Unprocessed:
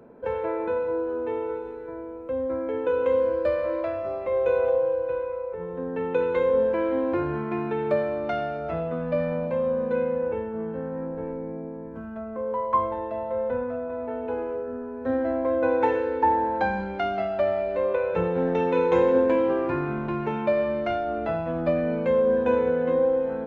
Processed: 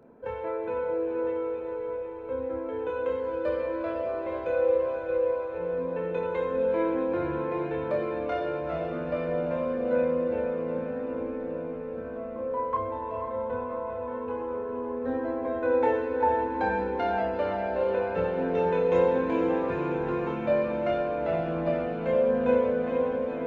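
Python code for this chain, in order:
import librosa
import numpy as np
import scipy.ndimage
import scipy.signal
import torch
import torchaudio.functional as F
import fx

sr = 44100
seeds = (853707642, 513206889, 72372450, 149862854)

y = fx.chorus_voices(x, sr, voices=2, hz=0.2, base_ms=27, depth_ms=3.1, mix_pct=40)
y = fx.echo_diffused(y, sr, ms=464, feedback_pct=73, wet_db=-6.5)
y = y * 10.0 ** (-1.5 / 20.0)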